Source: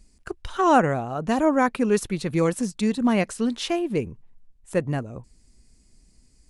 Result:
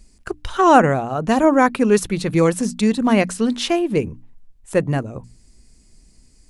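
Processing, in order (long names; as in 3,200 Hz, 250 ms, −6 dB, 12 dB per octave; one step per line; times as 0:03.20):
mains-hum notches 60/120/180/240/300 Hz
level +6 dB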